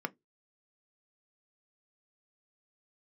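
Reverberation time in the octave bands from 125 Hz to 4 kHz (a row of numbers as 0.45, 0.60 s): 0.20, 0.20, 0.20, 0.10, 0.15, 0.15 s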